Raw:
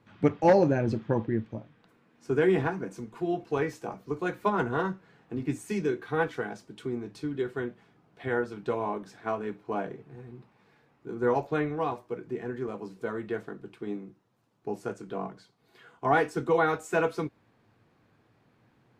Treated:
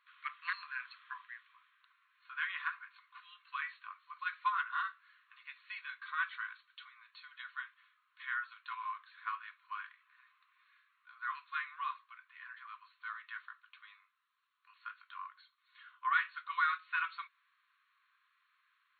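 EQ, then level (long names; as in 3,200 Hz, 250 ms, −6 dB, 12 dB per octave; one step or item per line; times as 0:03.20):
linear-phase brick-wall band-pass 1,000–4,400 Hz
−1.5 dB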